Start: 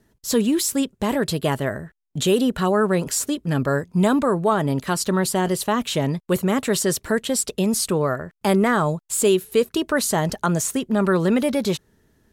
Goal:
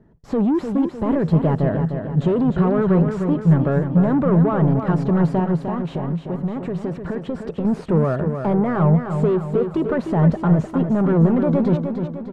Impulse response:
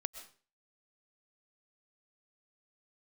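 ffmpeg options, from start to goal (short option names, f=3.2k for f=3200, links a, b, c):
-filter_complex "[0:a]alimiter=limit=-13dB:level=0:latency=1:release=66,crystalizer=i=1:c=0,asoftclip=type=tanh:threshold=-22.5dB,lowpass=1k,equalizer=f=160:w=4.8:g=9[a];[1:a]atrim=start_sample=2205,atrim=end_sample=4410[b];[a][b]afir=irnorm=-1:irlink=0,asettb=1/sr,asplit=3[c][d][e];[c]atrim=end=5.444[f];[d]atrim=start=5.44:end=7.65,asetpts=PTS-STARTPTS,afade=t=in:d=0.004:c=qsin,afade=t=out:st=2.206:d=0.004:c=qsin,acompressor=threshold=-32dB:ratio=6[g];[e]atrim=start=7.646[h];[f][g]acrossfade=d=0.004:c1=hsin:c2=qsin[i];[i][h]acrossfade=d=0.004:c1=qsin:c2=hsin,aecho=1:1:303|606|909|1212|1515|1818:0.447|0.223|0.112|0.0558|0.0279|0.014,volume=8.5dB"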